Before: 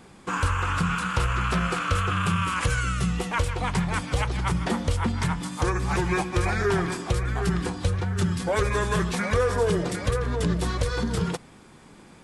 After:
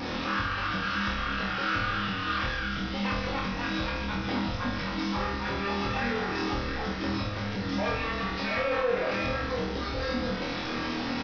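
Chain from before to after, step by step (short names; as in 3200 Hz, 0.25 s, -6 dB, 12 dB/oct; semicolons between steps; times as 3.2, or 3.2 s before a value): delta modulation 64 kbps, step -30 dBFS; spectral gain 9.27–9.97, 390–2700 Hz +10 dB; limiter -20 dBFS, peak gain reduction 15.5 dB; soft clip -30 dBFS, distortion -10 dB; flutter echo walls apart 4.7 m, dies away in 0.67 s; on a send at -2 dB: reverb RT60 0.20 s, pre-delay 3 ms; on the sum: downsampling 11025 Hz; speed mistake 44.1 kHz file played as 48 kHz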